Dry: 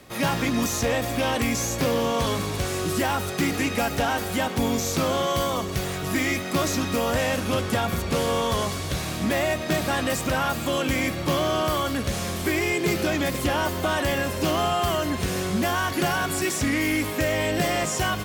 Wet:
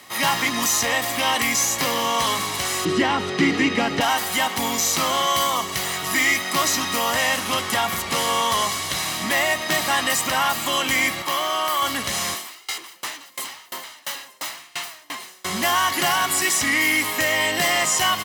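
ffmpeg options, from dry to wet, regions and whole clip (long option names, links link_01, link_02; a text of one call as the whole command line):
ffmpeg -i in.wav -filter_complex "[0:a]asettb=1/sr,asplit=3[link_01][link_02][link_03];[link_01]atrim=end=2.854[link_04];[link_02]atrim=start=2.85:end=4.01,asetpts=PTS-STARTPTS,afade=type=in:duration=0.004:curve=qsin,afade=type=out:start_time=1.156:duration=0.004:curve=qsin,highpass=100,lowpass=4000,lowshelf=frequency=540:width_type=q:width=1.5:gain=8.5[link_05];[link_03]atrim=start=4.006[link_06];[link_04][link_05]acrossfade=duration=0.004:curve1=hsin:curve2=qsin[link_07];[link_07][link_06]acrossfade=duration=0.004:curve1=qsin:curve2=hsin,asettb=1/sr,asplit=3[link_08][link_09][link_10];[link_08]atrim=end=11.224[link_11];[link_09]atrim=start=11.22:end=11.82,asetpts=PTS-STARTPTS,afade=type=in:duration=0.004:curve=qsin,afade=type=out:start_time=0.596:duration=0.004:curve=qsin,highpass=frequency=600:poles=1,equalizer=frequency=5300:width=0.5:gain=-4.5[link_12];[link_10]atrim=start=11.816[link_13];[link_11][link_12]acrossfade=duration=0.004:curve1=hsin:curve2=qsin[link_14];[link_14][link_13]acrossfade=duration=0.004:curve1=qsin:curve2=hsin,asettb=1/sr,asplit=3[link_15][link_16][link_17];[link_15]atrim=end=12.344[link_18];[link_16]atrim=start=12.34:end=15.45,asetpts=PTS-STARTPTS,afade=type=in:duration=0.004:curve=qsin,afade=type=out:start_time=3.106:duration=0.004:curve=qsin,highpass=300,aeval=exprs='0.0447*(abs(mod(val(0)/0.0447+3,4)-2)-1)':channel_layout=same,aeval=exprs='val(0)*pow(10,-29*if(lt(mod(2.9*n/s,1),2*abs(2.9)/1000),1-mod(2.9*n/s,1)/(2*abs(2.9)/1000),(mod(2.9*n/s,1)-2*abs(2.9)/1000)/(1-2*abs(2.9)/1000))/20)':channel_layout=same[link_19];[link_17]atrim=start=15.446[link_20];[link_18][link_19]acrossfade=duration=0.004:curve1=hsin:curve2=qsin[link_21];[link_21][link_20]acrossfade=duration=0.004:curve1=qsin:curve2=hsin,highpass=frequency=1100:poles=1,aecho=1:1:1:0.44,acontrast=57,volume=1.5dB" out.wav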